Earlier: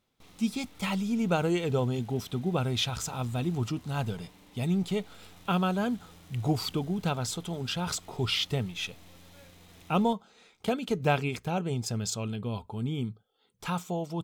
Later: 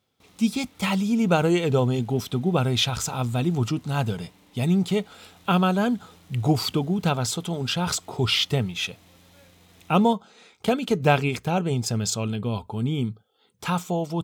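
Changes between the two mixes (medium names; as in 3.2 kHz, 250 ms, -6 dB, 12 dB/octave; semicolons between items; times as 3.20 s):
speech +6.5 dB; master: add high-pass 56 Hz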